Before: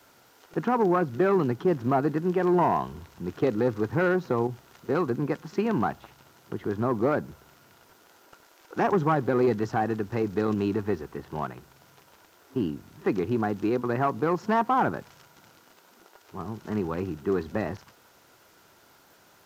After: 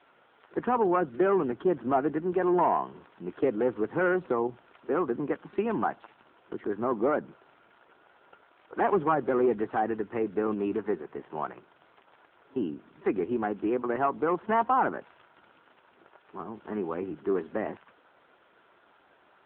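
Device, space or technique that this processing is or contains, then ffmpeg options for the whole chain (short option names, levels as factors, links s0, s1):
telephone: -filter_complex "[0:a]asettb=1/sr,asplit=3[s0][s1][s2];[s0]atrim=end=13.154[s3];[s1]atrim=start=13.15:end=14.16,asetpts=PTS-STARTPTS,afade=t=in:d=0.004:c=qsin,afade=t=out:st=1.006:d=0.004:c=qsin,lowpass=f=12000:w=0.5412,lowpass=f=12000:w=1.3066[s4];[s2]atrim=start=14.156[s5];[s3][s4]acrossfade=d=0.004:c1=hsin:c2=qsin[s6];[s6][s5]acrossfade=d=0.004:c1=qsin:c2=hsin,highpass=270,lowpass=3400" -ar 8000 -c:a libopencore_amrnb -b:a 7950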